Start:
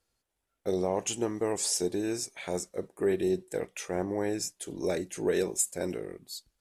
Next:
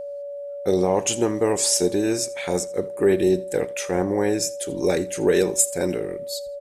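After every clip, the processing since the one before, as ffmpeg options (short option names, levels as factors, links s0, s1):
-af "bandreject=f=630:w=12,aeval=exprs='val(0)+0.0112*sin(2*PI*570*n/s)':c=same,aecho=1:1:82|164:0.0944|0.0255,volume=2.82"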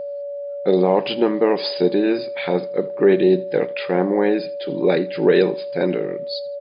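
-af "afftfilt=real='re*between(b*sr/4096,120,5000)':imag='im*between(b*sr/4096,120,5000)':win_size=4096:overlap=0.75,volume=1.58"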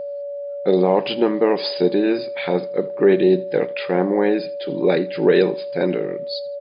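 -af anull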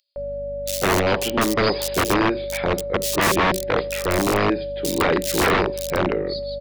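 -filter_complex "[0:a]aeval=exprs='val(0)+0.0141*(sin(2*PI*50*n/s)+sin(2*PI*2*50*n/s)/2+sin(2*PI*3*50*n/s)/3+sin(2*PI*4*50*n/s)/4+sin(2*PI*5*50*n/s)/5)':c=same,acrossover=split=740[s0][s1];[s0]aeval=exprs='(mod(4.22*val(0)+1,2)-1)/4.22':c=same[s2];[s2][s1]amix=inputs=2:normalize=0,acrossover=split=3700[s3][s4];[s3]adelay=160[s5];[s5][s4]amix=inputs=2:normalize=0"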